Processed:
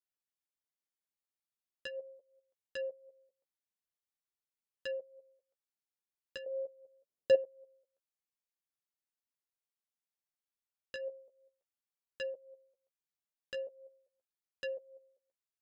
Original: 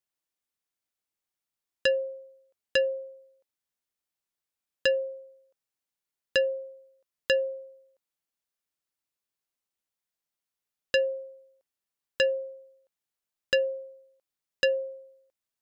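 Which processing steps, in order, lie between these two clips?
6.46–7.35 s: graphic EQ 125/250/500/2000 Hz +10/+7/+11/-6 dB; level held to a coarse grid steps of 15 dB; flange 0.41 Hz, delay 9.2 ms, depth 6.5 ms, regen +19%; trim -6 dB

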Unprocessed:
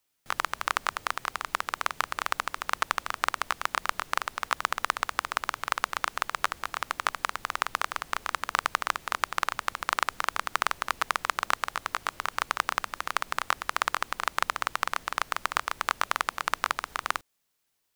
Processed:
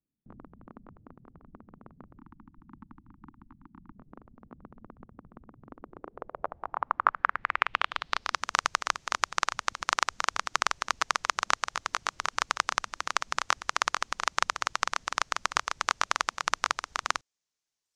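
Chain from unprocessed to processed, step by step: reverb removal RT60 1.2 s; 2.18–3.96 s: elliptic band-stop 320–870 Hz, stop band 40 dB; low-pass sweep 230 Hz -> 6.3 kHz, 5.60–8.45 s

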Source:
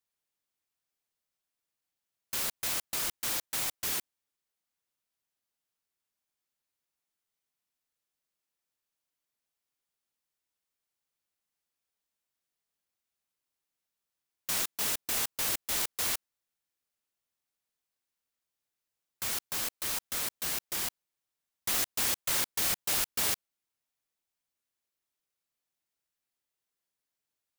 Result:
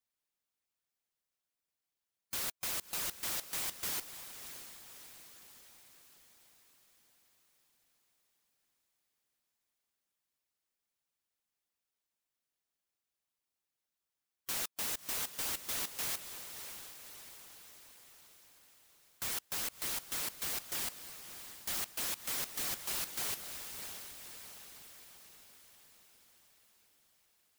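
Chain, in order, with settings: echo that smears into a reverb 614 ms, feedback 56%, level -12.5 dB; wavefolder -29 dBFS; harmonic-percussive split percussive +6 dB; trim -6.5 dB

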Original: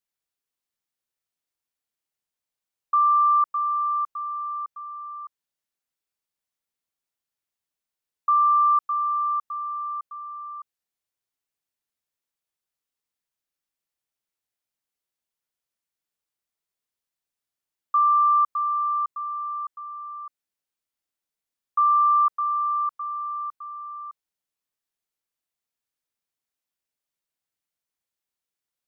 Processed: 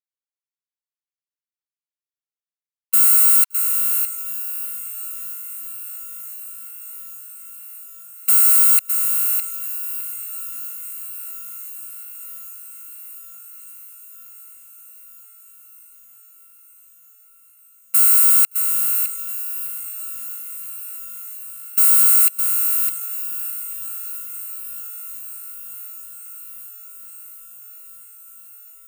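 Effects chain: bit-reversed sample order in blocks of 256 samples; gate -30 dBFS, range -18 dB; brick-wall FIR high-pass 1 kHz; echo that smears into a reverb 771 ms, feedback 77%, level -13 dB; trim +5.5 dB

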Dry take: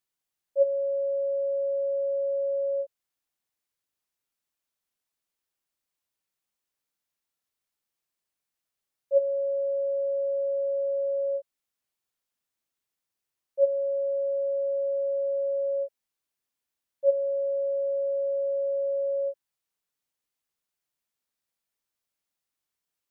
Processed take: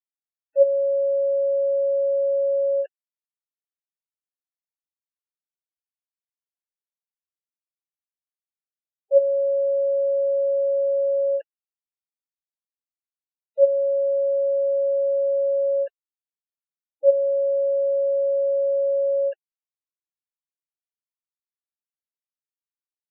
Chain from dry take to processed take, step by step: bit crusher 7-bit; spectral gate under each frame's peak -20 dB strong; trim +6 dB

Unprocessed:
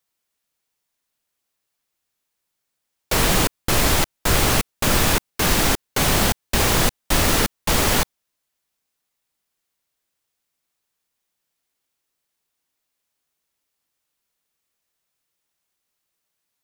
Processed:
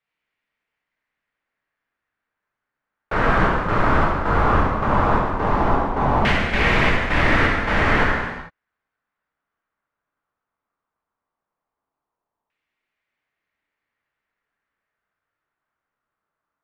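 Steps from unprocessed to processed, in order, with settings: gated-style reverb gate 480 ms falling, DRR -4 dB; LFO low-pass saw down 0.16 Hz 940–2300 Hz; trim -4.5 dB

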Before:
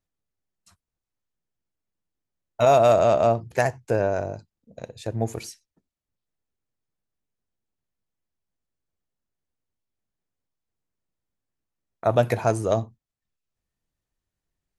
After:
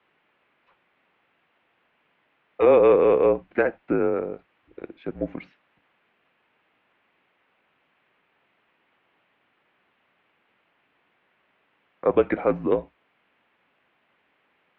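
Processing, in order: word length cut 10-bit, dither triangular; mistuned SSB -160 Hz 320–2900 Hz; trim +1 dB

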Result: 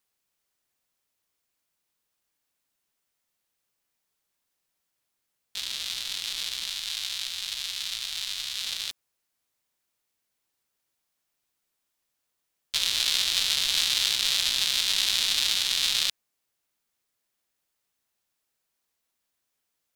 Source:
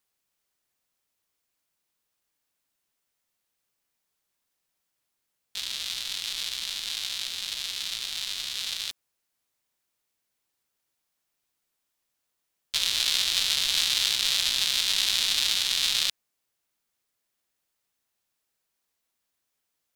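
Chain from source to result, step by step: 6.69–8.65 s: peaking EQ 310 Hz -10.5 dB 1.4 oct

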